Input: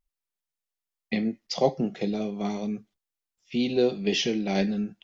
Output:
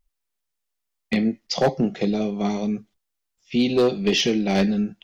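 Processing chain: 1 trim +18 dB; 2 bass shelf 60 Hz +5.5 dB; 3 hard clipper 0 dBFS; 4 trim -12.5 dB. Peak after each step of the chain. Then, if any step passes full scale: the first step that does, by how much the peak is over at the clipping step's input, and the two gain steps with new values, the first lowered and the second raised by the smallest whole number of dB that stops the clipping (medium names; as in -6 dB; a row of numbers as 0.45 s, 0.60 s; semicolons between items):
+10.0 dBFS, +10.0 dBFS, 0.0 dBFS, -12.5 dBFS; step 1, 10.0 dB; step 1 +8 dB, step 4 -2.5 dB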